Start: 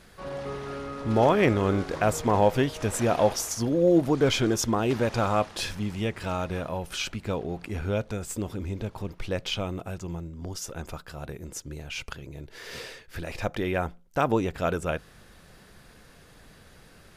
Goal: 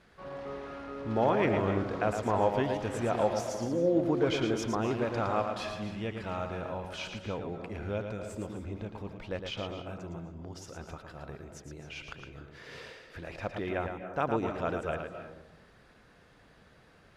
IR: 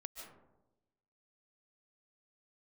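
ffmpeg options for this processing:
-filter_complex "[0:a]highpass=frequency=800:poles=1,aemphasis=mode=reproduction:type=riaa,asplit=2[link_01][link_02];[1:a]atrim=start_sample=2205,adelay=112[link_03];[link_02][link_03]afir=irnorm=-1:irlink=0,volume=-0.5dB[link_04];[link_01][link_04]amix=inputs=2:normalize=0,volume=-3.5dB"

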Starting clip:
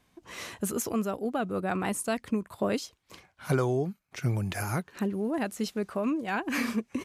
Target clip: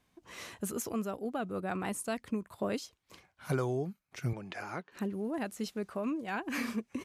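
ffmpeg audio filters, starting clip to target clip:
ffmpeg -i in.wav -filter_complex "[0:a]asettb=1/sr,asplit=3[link_01][link_02][link_03];[link_01]atrim=end=4.334[link_04];[link_02]atrim=start=4.33:end=4.92,asetpts=PTS-STARTPTS,afade=type=in:duration=0.004:curve=qsin,afade=type=out:start_time=0.586:duration=0.004:curve=qsin,highpass=260,lowpass=4200[link_05];[link_03]atrim=start=4.916[link_06];[link_04][link_05]acrossfade=duration=0.004:curve1=hsin:curve2=qsin[link_07];[link_07][link_06]acrossfade=duration=0.004:curve1=qsin:curve2=hsin,volume=-5.5dB" out.wav

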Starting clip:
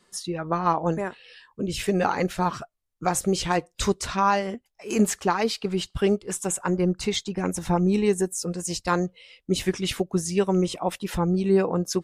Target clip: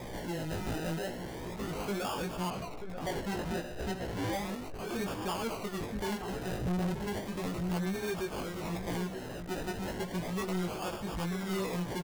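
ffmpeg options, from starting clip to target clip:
ffmpeg -i in.wav -filter_complex "[0:a]aeval=exprs='val(0)+0.5*0.0562*sgn(val(0))':channel_layout=same,acrusher=samples=31:mix=1:aa=0.000001:lfo=1:lforange=18.6:lforate=0.34,asettb=1/sr,asplit=3[link_01][link_02][link_03];[link_01]atrim=end=6.574[link_04];[link_02]atrim=start=6.57:end=6.99,asetpts=PTS-STARTPTS,afade=type=in:duration=0.004:curve=qsin,afade=type=out:start_time=0.416:duration=0.004:curve=qsin,lowshelf=frequency=380:gain=11.5[link_05];[link_03]atrim=start=6.986[link_06];[link_04][link_05]acrossfade=duration=0.004:curve1=hsin:curve2=qsin[link_07];[link_07][link_06]acrossfade=duration=0.004:curve1=qsin:curve2=hsin,asplit=2[link_08][link_09];[link_09]adelay=932.9,volume=-10dB,highshelf=frequency=4000:gain=-21[link_10];[link_08][link_10]amix=inputs=2:normalize=0,flanger=delay=16:depth=3.7:speed=0.77,asoftclip=type=tanh:threshold=-21dB,asettb=1/sr,asplit=3[link_11][link_12][link_13];[link_11]atrim=end=2.504[link_14];[link_12]atrim=start=2.5:end=4.33,asetpts=PTS-STARTPTS,afade=type=in:duration=0.004:curve=qsin,afade=type=out:start_time=1.826:duration=0.004:curve=qsin,adynamicequalizer=threshold=0.00398:dfrequency=6600:dqfactor=0.7:tfrequency=6600:tqfactor=0.7:attack=5:release=100:ratio=0.375:range=2:mode=cutabove:tftype=highshelf[link_15];[link_13]atrim=start=4.326[link_16];[link_14][link_15]acrossfade=duration=0.004:curve1=hsin:curve2=qsin[link_17];[link_17][link_16]acrossfade=duration=0.004:curve1=qsin:curve2=hsin,volume=-8dB" out.wav

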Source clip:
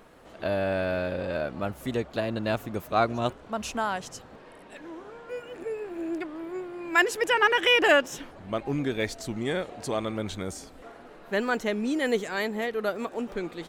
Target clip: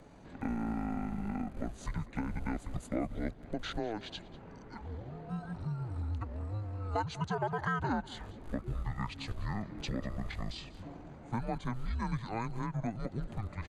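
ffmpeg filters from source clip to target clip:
ffmpeg -i in.wav -filter_complex "[0:a]acrossover=split=130[link_01][link_02];[link_01]acrusher=bits=7:mix=0:aa=0.000001[link_03];[link_03][link_02]amix=inputs=2:normalize=0,asetrate=25476,aresample=44100,atempo=1.73107,bandreject=frequency=5500:width=6.5,afreqshift=-110,acompressor=threshold=-34dB:ratio=3,asplit=2[link_04][link_05];[link_05]aecho=0:1:194:0.112[link_06];[link_04][link_06]amix=inputs=2:normalize=0" out.wav

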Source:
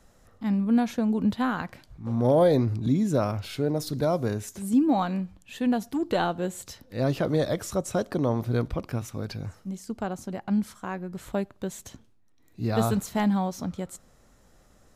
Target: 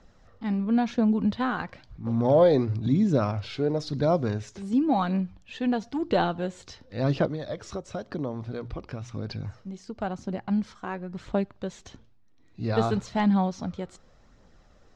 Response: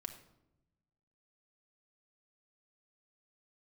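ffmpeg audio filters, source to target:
-filter_complex "[0:a]lowpass=frequency=5600:width=0.5412,lowpass=frequency=5600:width=1.3066,bandreject=frequency=60:width_type=h:width=6,bandreject=frequency=120:width_type=h:width=6,asplit=3[link_01][link_02][link_03];[link_01]afade=type=out:start_time=7.25:duration=0.02[link_04];[link_02]acompressor=threshold=-31dB:ratio=4,afade=type=in:start_time=7.25:duration=0.02,afade=type=out:start_time=9.98:duration=0.02[link_05];[link_03]afade=type=in:start_time=9.98:duration=0.02[link_06];[link_04][link_05][link_06]amix=inputs=3:normalize=0,aphaser=in_gain=1:out_gain=1:delay=2.8:decay=0.3:speed=0.97:type=triangular"

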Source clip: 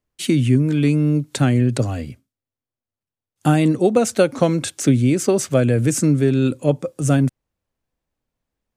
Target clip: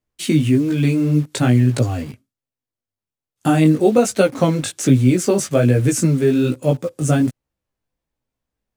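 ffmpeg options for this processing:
ffmpeg -i in.wav -filter_complex "[0:a]flanger=delay=15:depth=4.8:speed=1.2,asplit=2[link_01][link_02];[link_02]acrusher=bits=5:mix=0:aa=0.000001,volume=-9dB[link_03];[link_01][link_03]amix=inputs=2:normalize=0,volume=1.5dB" out.wav

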